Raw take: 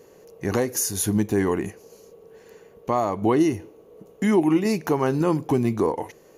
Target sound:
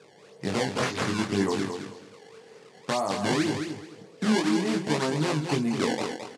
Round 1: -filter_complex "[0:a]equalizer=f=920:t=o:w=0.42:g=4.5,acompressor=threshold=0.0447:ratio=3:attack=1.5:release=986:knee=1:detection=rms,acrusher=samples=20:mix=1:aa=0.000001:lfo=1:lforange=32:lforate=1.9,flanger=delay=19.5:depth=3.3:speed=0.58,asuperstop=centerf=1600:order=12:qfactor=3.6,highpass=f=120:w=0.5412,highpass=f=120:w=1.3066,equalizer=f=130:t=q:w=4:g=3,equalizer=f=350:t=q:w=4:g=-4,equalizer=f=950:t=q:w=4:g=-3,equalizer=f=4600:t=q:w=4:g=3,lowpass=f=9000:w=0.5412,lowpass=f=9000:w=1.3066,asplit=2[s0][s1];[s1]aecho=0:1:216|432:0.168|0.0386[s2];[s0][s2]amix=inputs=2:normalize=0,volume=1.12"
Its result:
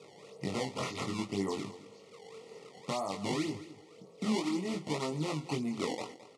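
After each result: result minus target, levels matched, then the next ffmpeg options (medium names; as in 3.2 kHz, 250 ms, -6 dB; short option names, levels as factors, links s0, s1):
compression: peak gain reduction +7.5 dB; echo-to-direct -8.5 dB; 2 kHz band -3.0 dB
-filter_complex "[0:a]equalizer=f=920:t=o:w=0.42:g=4.5,acompressor=threshold=0.168:ratio=3:attack=1.5:release=986:knee=1:detection=rms,acrusher=samples=20:mix=1:aa=0.000001:lfo=1:lforange=32:lforate=1.9,flanger=delay=19.5:depth=3.3:speed=0.58,asuperstop=centerf=1600:order=12:qfactor=3.6,highpass=f=120:w=0.5412,highpass=f=120:w=1.3066,equalizer=f=130:t=q:w=4:g=3,equalizer=f=350:t=q:w=4:g=-4,equalizer=f=950:t=q:w=4:g=-3,equalizer=f=4600:t=q:w=4:g=3,lowpass=f=9000:w=0.5412,lowpass=f=9000:w=1.3066,asplit=2[s0][s1];[s1]aecho=0:1:216|432:0.168|0.0386[s2];[s0][s2]amix=inputs=2:normalize=0,volume=1.12"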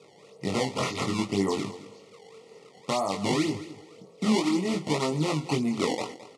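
echo-to-direct -8.5 dB; 2 kHz band -3.0 dB
-filter_complex "[0:a]equalizer=f=920:t=o:w=0.42:g=4.5,acompressor=threshold=0.168:ratio=3:attack=1.5:release=986:knee=1:detection=rms,acrusher=samples=20:mix=1:aa=0.000001:lfo=1:lforange=32:lforate=1.9,flanger=delay=19.5:depth=3.3:speed=0.58,asuperstop=centerf=1600:order=12:qfactor=3.6,highpass=f=120:w=0.5412,highpass=f=120:w=1.3066,equalizer=f=130:t=q:w=4:g=3,equalizer=f=350:t=q:w=4:g=-4,equalizer=f=950:t=q:w=4:g=-3,equalizer=f=4600:t=q:w=4:g=3,lowpass=f=9000:w=0.5412,lowpass=f=9000:w=1.3066,asplit=2[s0][s1];[s1]aecho=0:1:216|432|648:0.447|0.103|0.0236[s2];[s0][s2]amix=inputs=2:normalize=0,volume=1.12"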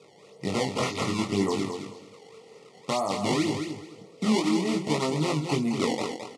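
2 kHz band -3.0 dB
-filter_complex "[0:a]equalizer=f=920:t=o:w=0.42:g=4.5,acompressor=threshold=0.168:ratio=3:attack=1.5:release=986:knee=1:detection=rms,acrusher=samples=20:mix=1:aa=0.000001:lfo=1:lforange=32:lforate=1.9,flanger=delay=19.5:depth=3.3:speed=0.58,highpass=f=120:w=0.5412,highpass=f=120:w=1.3066,equalizer=f=130:t=q:w=4:g=3,equalizer=f=350:t=q:w=4:g=-4,equalizer=f=950:t=q:w=4:g=-3,equalizer=f=4600:t=q:w=4:g=3,lowpass=f=9000:w=0.5412,lowpass=f=9000:w=1.3066,asplit=2[s0][s1];[s1]aecho=0:1:216|432|648:0.447|0.103|0.0236[s2];[s0][s2]amix=inputs=2:normalize=0,volume=1.12"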